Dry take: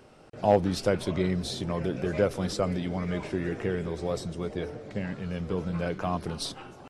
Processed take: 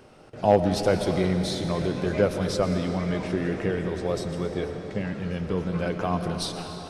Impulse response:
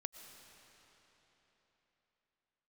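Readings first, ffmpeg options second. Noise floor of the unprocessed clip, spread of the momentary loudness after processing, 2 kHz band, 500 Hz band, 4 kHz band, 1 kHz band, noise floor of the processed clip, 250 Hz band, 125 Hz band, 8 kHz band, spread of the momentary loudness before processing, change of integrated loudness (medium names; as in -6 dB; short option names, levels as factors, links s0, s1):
-50 dBFS, 9 LU, +3.5 dB, +3.5 dB, +3.5 dB, +3.5 dB, -41 dBFS, +3.5 dB, +3.5 dB, +3.0 dB, 10 LU, +3.5 dB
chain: -filter_complex "[0:a]bandreject=f=7500:w=21[s0];[1:a]atrim=start_sample=2205[s1];[s0][s1]afir=irnorm=-1:irlink=0,volume=2.11"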